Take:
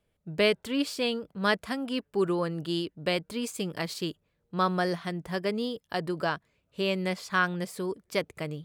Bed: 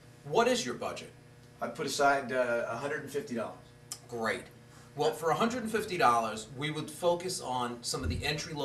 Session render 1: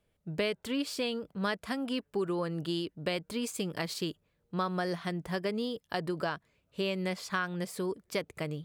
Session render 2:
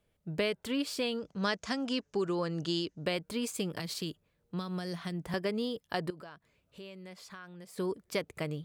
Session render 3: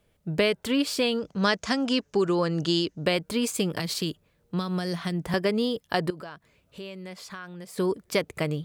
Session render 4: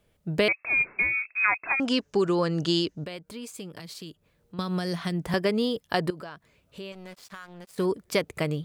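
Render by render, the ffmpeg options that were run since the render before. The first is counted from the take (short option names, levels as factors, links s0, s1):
-af "acompressor=threshold=0.0355:ratio=4"
-filter_complex "[0:a]asettb=1/sr,asplit=3[s0][s1][s2];[s0]atrim=end=1.184[s3];[s1]atrim=start=1.18:end=3.05,asetpts=PTS-STARTPTS,afade=t=in:d=0.004:c=qsin,afade=t=out:st=1.866:d=0.004:c=qsin,lowpass=f=6300:t=q:w=5[s4];[s2]atrim=start=3.046[s5];[s3][s4]acrossfade=d=0.004:c1=hsin:c2=qsin[s6];[s6][s5]acrossfade=d=0.004:c1=qsin:c2=hsin,asettb=1/sr,asplit=3[s7][s8][s9];[s7]atrim=end=3.794[s10];[s8]atrim=start=3.79:end=5.34,asetpts=PTS-STARTPTS,afade=t=in:d=0.004:c=qsin,afade=t=out:st=1.546:d=0.004:c=qsin,acrossover=split=250|3000[s11][s12][s13];[s12]acompressor=threshold=0.01:ratio=6:attack=3.2:release=140:knee=2.83:detection=peak[s14];[s11][s14][s13]amix=inputs=3:normalize=0[s15];[s9]atrim=start=5.336[s16];[s10][s15]acrossfade=d=0.004:c1=hsin:c2=qsin[s17];[s17][s16]acrossfade=d=0.004:c1=qsin:c2=hsin,asettb=1/sr,asplit=3[s18][s19][s20];[s18]atrim=end=6.104[s21];[s19]atrim=start=6.1:end=7.78,asetpts=PTS-STARTPTS,afade=t=in:d=0.004:c=qsin,afade=t=out:st=1.676:d=0.004:c=qsin,acompressor=threshold=0.00251:ratio=2.5:attack=3.2:release=140:knee=1:detection=peak[s22];[s20]atrim=start=7.776[s23];[s21][s22]acrossfade=d=0.004:c1=hsin:c2=qsin[s24];[s24][s23]acrossfade=d=0.004:c1=qsin:c2=hsin"
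-af "volume=2.51"
-filter_complex "[0:a]asettb=1/sr,asplit=3[s0][s1][s2];[s0]atrim=end=0.484[s3];[s1]atrim=start=0.48:end=1.8,asetpts=PTS-STARTPTS,afade=t=in:d=0.004:c=qsin,afade=t=out:st=1.316:d=0.004:c=qsin,lowpass=f=2300:t=q:w=0.5098,lowpass=f=2300:t=q:w=0.6013,lowpass=f=2300:t=q:w=0.9,lowpass=f=2300:t=q:w=2.563,afreqshift=-2700[s4];[s2]atrim=start=1.796[s5];[s3][s4]acrossfade=d=0.004:c1=hsin:c2=qsin[s6];[s6][s5]acrossfade=d=0.004:c1=qsin:c2=hsin,asettb=1/sr,asplit=3[s7][s8][s9];[s7]atrim=end=3.044[s10];[s8]atrim=start=3.04:end=4.59,asetpts=PTS-STARTPTS,afade=t=in:d=0.004:c=qsin,afade=t=out:st=1.546:d=0.004:c=qsin,acompressor=threshold=0.00112:ratio=1.5:attack=3.2:release=140:knee=1:detection=peak[s11];[s9]atrim=start=4.586[s12];[s10][s11]acrossfade=d=0.004:c1=hsin:c2=qsin[s13];[s13][s12]acrossfade=d=0.004:c1=qsin:c2=hsin,asettb=1/sr,asplit=3[s14][s15][s16];[s14]atrim=end=6.924[s17];[s15]atrim=start=6.92:end=7.85,asetpts=PTS-STARTPTS,afade=t=in:d=0.004:c=qsin,afade=t=out:st=0.926:d=0.004:c=qsin,aeval=exprs='sgn(val(0))*max(abs(val(0))-0.00531,0)':c=same[s18];[s16]atrim=start=7.846[s19];[s17][s18]acrossfade=d=0.004:c1=hsin:c2=qsin[s20];[s20][s19]acrossfade=d=0.004:c1=qsin:c2=hsin"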